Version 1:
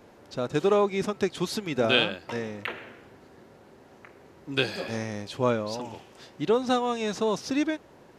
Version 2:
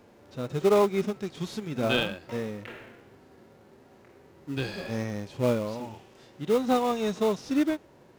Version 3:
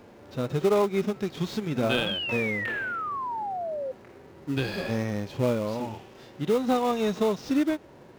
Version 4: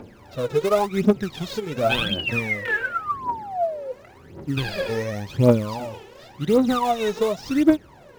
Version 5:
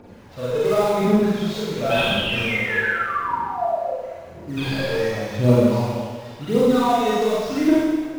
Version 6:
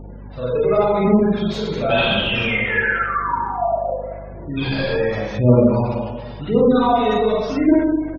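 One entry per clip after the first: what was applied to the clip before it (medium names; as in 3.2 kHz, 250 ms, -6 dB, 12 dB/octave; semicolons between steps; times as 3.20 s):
harmonic-percussive split percussive -14 dB; in parallel at -10.5 dB: sample-rate reducer 1.7 kHz, jitter 20%
median filter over 5 samples; compression 2:1, threshold -30 dBFS, peak gain reduction 7 dB; painted sound fall, 2.06–3.92 s, 510–3400 Hz -37 dBFS; trim +5.5 dB
phaser 0.91 Hz, delay 2.4 ms, feedback 74%; trim +1 dB
Schroeder reverb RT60 1.5 s, combs from 33 ms, DRR -8 dB; trim -6 dB
hum 50 Hz, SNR 18 dB; spectral gate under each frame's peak -30 dB strong; resampled via 32 kHz; trim +2.5 dB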